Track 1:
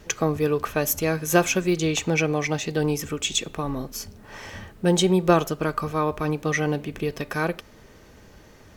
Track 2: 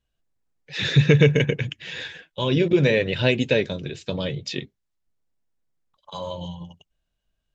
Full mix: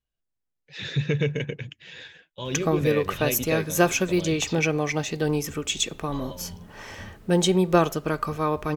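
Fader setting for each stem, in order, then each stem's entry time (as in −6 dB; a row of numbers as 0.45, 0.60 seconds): −1.0, −9.0 decibels; 2.45, 0.00 seconds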